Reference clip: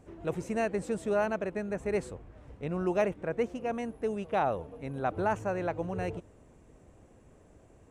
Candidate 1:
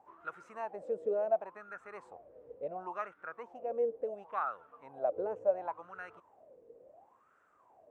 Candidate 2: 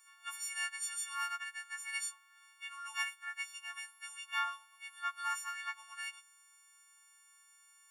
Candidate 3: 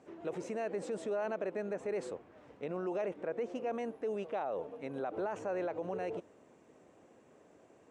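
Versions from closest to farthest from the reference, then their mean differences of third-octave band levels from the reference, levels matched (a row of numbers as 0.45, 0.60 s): 3, 1, 2; 4.0, 10.0, 21.0 dB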